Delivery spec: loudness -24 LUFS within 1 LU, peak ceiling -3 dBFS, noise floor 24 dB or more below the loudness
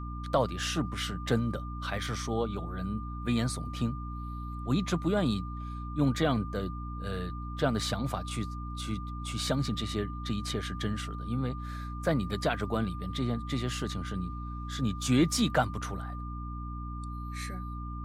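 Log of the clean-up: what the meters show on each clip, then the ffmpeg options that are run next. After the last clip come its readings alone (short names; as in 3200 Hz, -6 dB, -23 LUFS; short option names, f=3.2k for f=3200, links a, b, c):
hum 60 Hz; harmonics up to 300 Hz; hum level -36 dBFS; steady tone 1200 Hz; tone level -43 dBFS; loudness -32.5 LUFS; peak -14.0 dBFS; loudness target -24.0 LUFS
-> -af "bandreject=f=60:t=h:w=6,bandreject=f=120:t=h:w=6,bandreject=f=180:t=h:w=6,bandreject=f=240:t=h:w=6,bandreject=f=300:t=h:w=6"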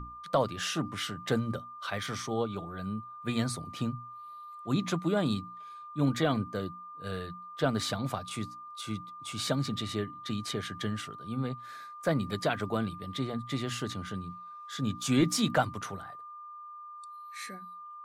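hum none; steady tone 1200 Hz; tone level -43 dBFS
-> -af "bandreject=f=1.2k:w=30"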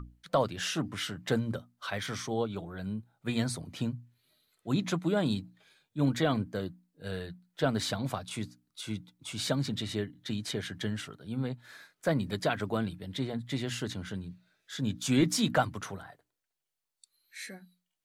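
steady tone none; loudness -33.0 LUFS; peak -13.0 dBFS; loudness target -24.0 LUFS
-> -af "volume=9dB"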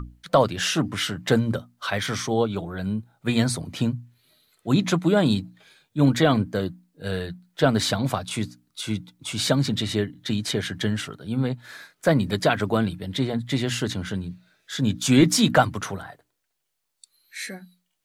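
loudness -24.0 LUFS; peak -4.0 dBFS; noise floor -76 dBFS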